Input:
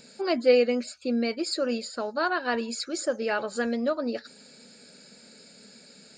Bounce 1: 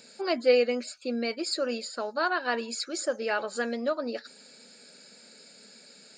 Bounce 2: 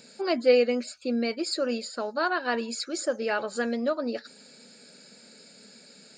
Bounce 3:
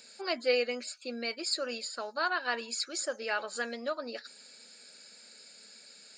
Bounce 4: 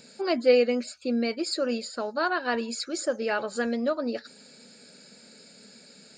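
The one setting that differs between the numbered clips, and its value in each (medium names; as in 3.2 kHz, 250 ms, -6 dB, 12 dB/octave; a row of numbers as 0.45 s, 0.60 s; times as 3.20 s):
high-pass, cutoff frequency: 370 Hz, 130 Hz, 1.3 kHz, 40 Hz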